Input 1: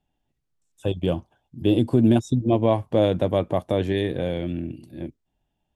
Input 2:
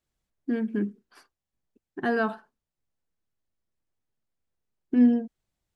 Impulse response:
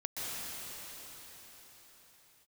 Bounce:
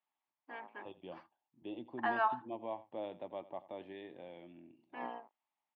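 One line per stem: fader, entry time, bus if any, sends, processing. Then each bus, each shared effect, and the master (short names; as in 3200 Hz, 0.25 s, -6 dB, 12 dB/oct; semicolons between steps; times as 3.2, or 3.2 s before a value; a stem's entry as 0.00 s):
-19.5 dB, 0.00 s, no send, echo send -18 dB, dry
-4.0 dB, 0.00 s, no send, no echo send, octaver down 2 oct, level +3 dB; resonant high-pass 970 Hz, resonance Q 1.7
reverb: off
echo: echo 87 ms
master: speaker cabinet 350–3100 Hz, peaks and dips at 460 Hz -7 dB, 870 Hz +7 dB, 1500 Hz -8 dB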